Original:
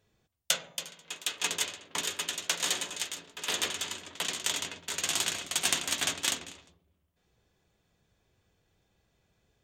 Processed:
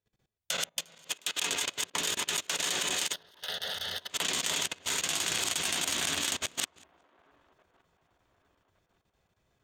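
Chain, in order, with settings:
delay that plays each chunk backwards 190 ms, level −4 dB
in parallel at −5 dB: dead-zone distortion −45 dBFS
on the sum: output level in coarse steps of 18 dB
0:03.13–0:04.10: phaser with its sweep stopped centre 1,600 Hz, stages 8
delay with a band-pass on its return 1,165 ms, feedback 40%, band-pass 650 Hz, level −17 dB
expander for the loud parts 1.5 to 1, over −51 dBFS
level +6 dB

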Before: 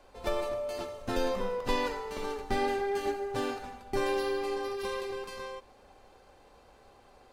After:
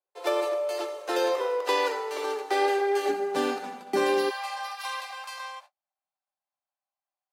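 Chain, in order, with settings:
noise gate −49 dBFS, range −42 dB
Butterworth high-pass 310 Hz 96 dB per octave, from 0:03.08 150 Hz, from 0:04.29 590 Hz
level +6 dB

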